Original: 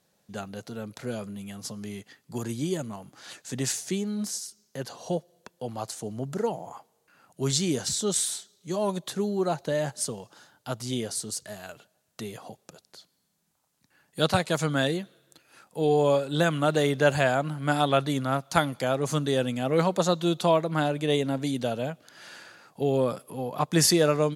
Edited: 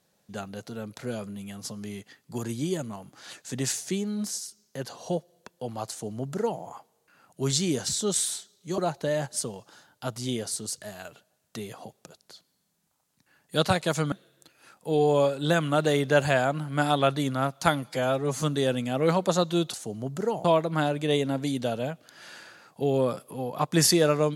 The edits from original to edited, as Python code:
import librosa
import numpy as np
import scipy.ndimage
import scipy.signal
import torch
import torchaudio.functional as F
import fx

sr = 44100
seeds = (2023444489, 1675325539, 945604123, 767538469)

y = fx.edit(x, sr, fx.duplicate(start_s=5.9, length_s=0.71, to_s=20.44),
    fx.cut(start_s=8.78, length_s=0.64),
    fx.cut(start_s=14.76, length_s=0.26),
    fx.stretch_span(start_s=18.74, length_s=0.39, factor=1.5), tone=tone)